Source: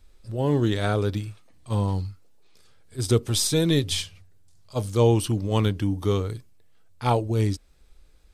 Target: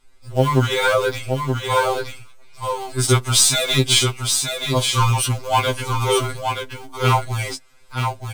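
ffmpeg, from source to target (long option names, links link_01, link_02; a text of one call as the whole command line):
ffmpeg -i in.wav -filter_complex "[0:a]equalizer=frequency=1000:width_type=o:width=1:gain=6,equalizer=frequency=2000:width_type=o:width=1:gain=8,equalizer=frequency=8000:width_type=o:width=1:gain=5,acrossover=split=360[link_01][link_02];[link_02]dynaudnorm=framelen=110:gausssize=7:maxgain=6dB[link_03];[link_01][link_03]amix=inputs=2:normalize=0,asoftclip=type=hard:threshold=-9dB,asplit=2[link_04][link_05];[link_05]acrusher=bits=4:dc=4:mix=0:aa=0.000001,volume=-10dB[link_06];[link_04][link_06]amix=inputs=2:normalize=0,asuperstop=centerf=1800:order=4:qfactor=7.6,aecho=1:1:925:0.531,afftfilt=real='re*2.45*eq(mod(b,6),0)':imag='im*2.45*eq(mod(b,6),0)':win_size=2048:overlap=0.75,volume=2dB" out.wav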